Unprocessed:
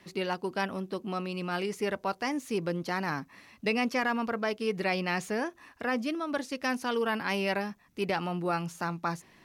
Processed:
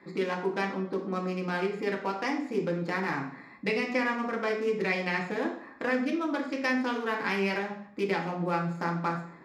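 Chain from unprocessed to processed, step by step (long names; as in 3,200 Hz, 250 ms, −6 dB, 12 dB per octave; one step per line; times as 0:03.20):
adaptive Wiener filter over 15 samples
downward compressor 2.5 to 1, threshold −36 dBFS, peak gain reduction 8.5 dB
convolution reverb RT60 0.60 s, pre-delay 3 ms, DRR −0.5 dB
level +2 dB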